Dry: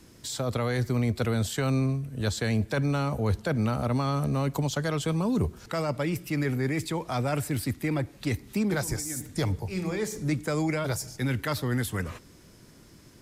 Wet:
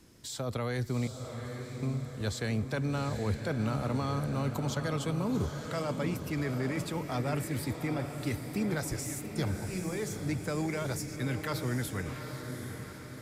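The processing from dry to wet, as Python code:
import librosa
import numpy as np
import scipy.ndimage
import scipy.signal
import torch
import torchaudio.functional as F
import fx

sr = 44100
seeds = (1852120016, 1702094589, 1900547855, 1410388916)

p1 = fx.tone_stack(x, sr, knobs='10-0-1', at=(1.07, 1.83))
p2 = p1 + fx.echo_diffused(p1, sr, ms=801, feedback_pct=54, wet_db=-7.0, dry=0)
y = p2 * 10.0 ** (-5.5 / 20.0)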